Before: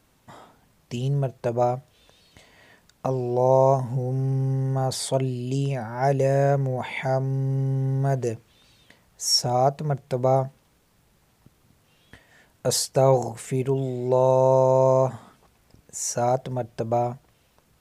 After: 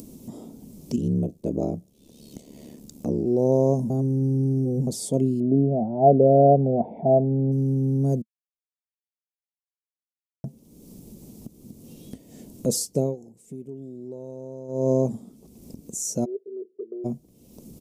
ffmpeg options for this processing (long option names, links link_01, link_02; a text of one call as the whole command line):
ffmpeg -i in.wav -filter_complex "[0:a]asplit=3[link_01][link_02][link_03];[link_01]afade=type=out:start_time=0.96:duration=0.02[link_04];[link_02]aeval=exprs='val(0)*sin(2*PI*36*n/s)':channel_layout=same,afade=type=in:start_time=0.96:duration=0.02,afade=type=out:start_time=3.25:duration=0.02[link_05];[link_03]afade=type=in:start_time=3.25:duration=0.02[link_06];[link_04][link_05][link_06]amix=inputs=3:normalize=0,asettb=1/sr,asplit=3[link_07][link_08][link_09];[link_07]atrim=end=5.404[link_10];[link_08]atrim=start=5.4:end=7.52,asetpts=PTS-STARTPTS,afade=type=in:duration=0.004:curve=qsin,afade=type=out:start_time=2.116:duration=0.004:curve=qsin,lowpass=frequency=700:width_type=q:width=8.6[link_11];[link_09]atrim=start=7.516[link_12];[link_10][link_11]acrossfade=duration=0.004:curve1=hsin:curve2=qsin[link_13];[link_13][link_12]acrossfade=duration=0.004:curve1=qsin:curve2=hsin,asplit=3[link_14][link_15][link_16];[link_14]afade=type=out:start_time=16.24:duration=0.02[link_17];[link_15]asuperpass=centerf=400:order=4:qfactor=6.6,afade=type=in:start_time=16.24:duration=0.02,afade=type=out:start_time=17.04:duration=0.02[link_18];[link_16]afade=type=in:start_time=17.04:duration=0.02[link_19];[link_17][link_18][link_19]amix=inputs=3:normalize=0,asplit=7[link_20][link_21][link_22][link_23][link_24][link_25][link_26];[link_20]atrim=end=3.902[link_27];[link_21]atrim=start=3.898:end=4.872,asetpts=PTS-STARTPTS,areverse[link_28];[link_22]atrim=start=4.868:end=8.22,asetpts=PTS-STARTPTS,afade=type=out:start_time=3.348:duration=0.004:curve=hsin[link_29];[link_23]atrim=start=8.22:end=10.44,asetpts=PTS-STARTPTS,volume=0[link_30];[link_24]atrim=start=10.44:end=13.16,asetpts=PTS-STARTPTS,afade=type=in:duration=0.004:curve=hsin,afade=type=out:start_time=2.49:duration=0.23:silence=0.0891251[link_31];[link_25]atrim=start=13.16:end=14.68,asetpts=PTS-STARTPTS,volume=-21dB[link_32];[link_26]atrim=start=14.68,asetpts=PTS-STARTPTS,afade=type=in:duration=0.23:silence=0.0891251[link_33];[link_27][link_28]acrossfade=duration=0.004:curve1=hsin:curve2=hsin[link_34];[link_29][link_30][link_31][link_32][link_33]concat=n=5:v=0:a=1[link_35];[link_34][link_35]acrossfade=duration=0.004:curve1=hsin:curve2=hsin,firequalizer=gain_entry='entry(110,0);entry(220,14);entry(770,-10);entry(1600,-26);entry(2300,-15);entry(5800,-3)':delay=0.05:min_phase=1,acompressor=mode=upward:threshold=-27dB:ratio=2.5,highshelf=frequency=7100:gain=8,volume=-3dB" out.wav